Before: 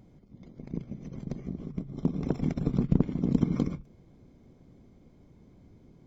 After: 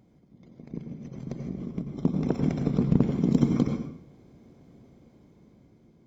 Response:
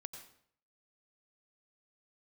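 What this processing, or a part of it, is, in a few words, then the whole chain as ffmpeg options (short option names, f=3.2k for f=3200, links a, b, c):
far laptop microphone: -filter_complex "[0:a]asettb=1/sr,asplit=3[a][b][c];[a]atrim=end=2.964[d];[b]atrim=start=2.96:end=3.45,asetpts=PTS-STARTPTS,afade=t=in:d=0.004:c=qsin,afade=t=out:st=0.486:d=0.004:c=qsin,highshelf=f=5k:g=8.5[e];[c]atrim=start=3.446[f];[d][e]acrossfade=d=0.004:c1=hsin:c2=qsin[g];[g][f]acrossfade=d=0.004:c1=qsin:c2=hsin[h];[1:a]atrim=start_sample=2205[i];[h][i]afir=irnorm=-1:irlink=0,highpass=f=110:p=1,dynaudnorm=f=470:g=5:m=6dB,volume=2.5dB"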